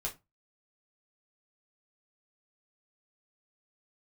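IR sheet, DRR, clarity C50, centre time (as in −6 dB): −2.5 dB, 15.0 dB, 14 ms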